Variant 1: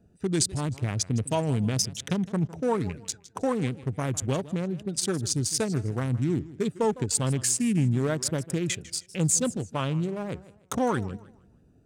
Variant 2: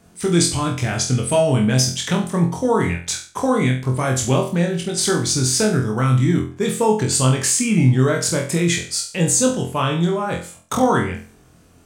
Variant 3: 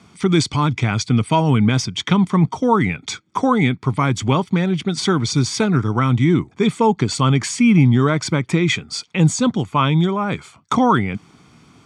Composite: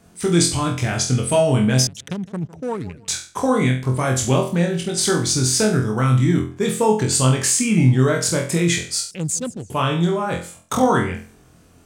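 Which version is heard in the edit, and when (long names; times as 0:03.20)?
2
0:01.87–0:03.08: punch in from 1
0:09.11–0:09.70: punch in from 1
not used: 3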